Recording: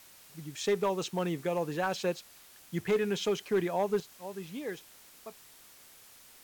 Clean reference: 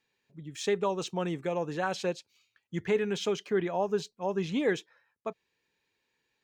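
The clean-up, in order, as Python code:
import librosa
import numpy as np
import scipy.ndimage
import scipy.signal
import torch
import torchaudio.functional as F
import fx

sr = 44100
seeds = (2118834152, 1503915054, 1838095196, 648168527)

y = fx.fix_declip(x, sr, threshold_db=-21.5)
y = fx.noise_reduce(y, sr, print_start_s=5.47, print_end_s=5.97, reduce_db=24.0)
y = fx.gain(y, sr, db=fx.steps((0.0, 0.0), (4.0, 10.5)))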